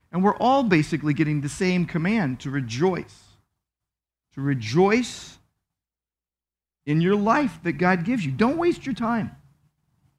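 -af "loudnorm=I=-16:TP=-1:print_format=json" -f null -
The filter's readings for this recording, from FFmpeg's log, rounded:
"input_i" : "-23.1",
"input_tp" : "-6.3",
"input_lra" : "4.0",
"input_thresh" : "-34.0",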